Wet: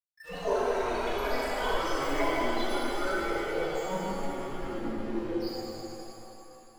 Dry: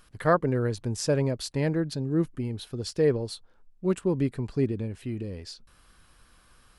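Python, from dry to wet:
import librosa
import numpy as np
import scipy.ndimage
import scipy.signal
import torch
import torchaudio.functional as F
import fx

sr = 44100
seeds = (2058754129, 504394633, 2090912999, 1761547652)

p1 = fx.spec_delay(x, sr, highs='early', ms=123)
p2 = fx.highpass(p1, sr, hz=690.0, slope=6)
p3 = p2 + fx.echo_heads(p2, sr, ms=123, heads='first and second', feedback_pct=66, wet_db=-19.5, dry=0)
p4 = fx.env_lowpass_down(p3, sr, base_hz=1500.0, full_db=-29.5)
p5 = fx.rider(p4, sr, range_db=4, speed_s=0.5)
p6 = (np.mod(10.0 ** (27.0 / 20.0) * p5 + 1.0, 2.0) - 1.0) / 10.0 ** (27.0 / 20.0)
p7 = fx.chorus_voices(p6, sr, voices=6, hz=0.33, base_ms=30, depth_ms=2.8, mix_pct=65)
p8 = fx.spec_topn(p7, sr, count=4)
p9 = fx.echo_pitch(p8, sr, ms=139, semitones=7, count=3, db_per_echo=-3.0)
p10 = np.sign(p9) * np.maximum(np.abs(p9) - 10.0 ** (-54.5 / 20.0), 0.0)
p11 = fx.rev_shimmer(p10, sr, seeds[0], rt60_s=3.0, semitones=7, shimmer_db=-8, drr_db=-8.5)
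y = F.gain(torch.from_numpy(p11), 4.0).numpy()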